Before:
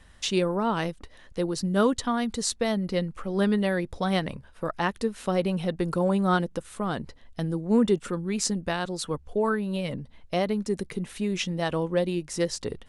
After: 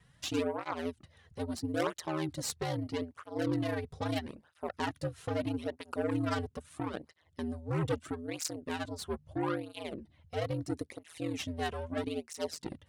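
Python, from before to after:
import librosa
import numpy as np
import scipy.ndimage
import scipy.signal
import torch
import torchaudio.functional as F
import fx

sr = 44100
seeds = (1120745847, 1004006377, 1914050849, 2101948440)

y = fx.cheby_harmonics(x, sr, harmonics=(2, 3, 6, 8), levels_db=(-10, -19, -25, -18), full_scale_db=-9.0)
y = y * np.sin(2.0 * np.pi * 81.0 * np.arange(len(y)) / sr)
y = fx.flanger_cancel(y, sr, hz=0.77, depth_ms=3.6)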